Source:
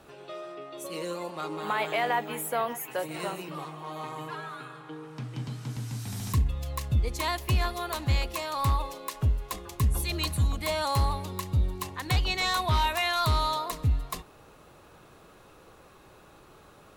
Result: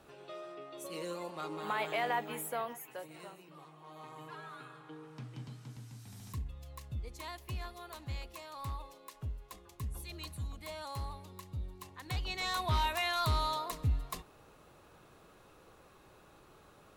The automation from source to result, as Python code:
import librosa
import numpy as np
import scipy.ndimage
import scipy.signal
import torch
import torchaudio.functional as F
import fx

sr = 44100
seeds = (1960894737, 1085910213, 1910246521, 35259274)

y = fx.gain(x, sr, db=fx.line((2.38, -6.0), (3.41, -18.0), (4.57, -8.0), (5.16, -8.0), (5.96, -15.0), (11.78, -15.0), (12.71, -6.0)))